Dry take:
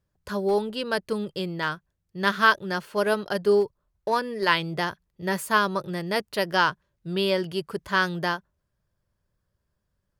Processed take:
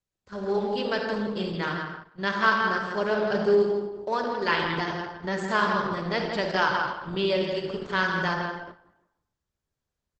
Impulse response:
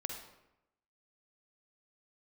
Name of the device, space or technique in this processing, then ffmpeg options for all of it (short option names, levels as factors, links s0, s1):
speakerphone in a meeting room: -filter_complex "[0:a]asplit=3[s0][s1][s2];[s0]afade=t=out:st=2.79:d=0.02[s3];[s1]adynamicequalizer=threshold=0.00794:dfrequency=150:dqfactor=2.2:tfrequency=150:tqfactor=2.2:attack=5:release=100:ratio=0.375:range=2:mode=boostabove:tftype=bell,afade=t=in:st=2.79:d=0.02,afade=t=out:st=3.54:d=0.02[s4];[s2]afade=t=in:st=3.54:d=0.02[s5];[s3][s4][s5]amix=inputs=3:normalize=0,asplit=2[s6][s7];[s7]adelay=163,lowpass=f=4100:p=1,volume=0.562,asplit=2[s8][s9];[s9]adelay=163,lowpass=f=4100:p=1,volume=0.27,asplit=2[s10][s11];[s11]adelay=163,lowpass=f=4100:p=1,volume=0.27,asplit=2[s12][s13];[s13]adelay=163,lowpass=f=4100:p=1,volume=0.27[s14];[s6][s8][s10][s12][s14]amix=inputs=5:normalize=0[s15];[1:a]atrim=start_sample=2205[s16];[s15][s16]afir=irnorm=-1:irlink=0,dynaudnorm=f=120:g=9:m=1.78,agate=range=0.355:threshold=0.0224:ratio=16:detection=peak,volume=0.531" -ar 48000 -c:a libopus -b:a 12k